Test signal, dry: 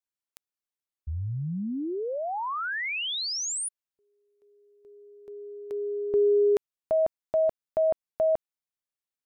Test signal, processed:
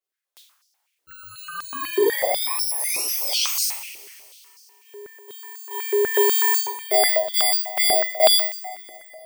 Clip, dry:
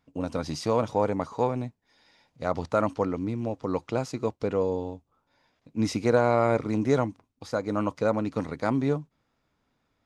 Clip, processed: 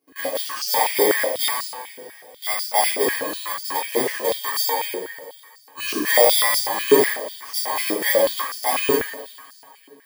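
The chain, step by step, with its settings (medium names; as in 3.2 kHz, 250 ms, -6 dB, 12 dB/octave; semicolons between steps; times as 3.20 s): bit-reversed sample order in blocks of 32 samples; two-slope reverb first 0.61 s, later 2.8 s, from -16 dB, DRR -9 dB; step-sequenced high-pass 8.1 Hz 390–5100 Hz; trim -4 dB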